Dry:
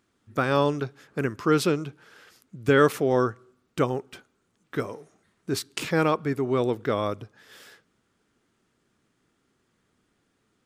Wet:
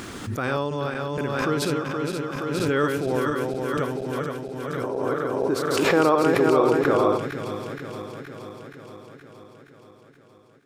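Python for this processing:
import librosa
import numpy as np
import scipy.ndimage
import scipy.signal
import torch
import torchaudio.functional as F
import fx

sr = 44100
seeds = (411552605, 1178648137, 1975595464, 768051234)

y = fx.reverse_delay_fb(x, sr, ms=236, feedback_pct=80, wet_db=-3.0)
y = fx.band_shelf(y, sr, hz=650.0, db=8.5, octaves=2.7, at=(4.83, 7.18))
y = fx.pre_swell(y, sr, db_per_s=25.0)
y = y * 10.0 ** (-5.0 / 20.0)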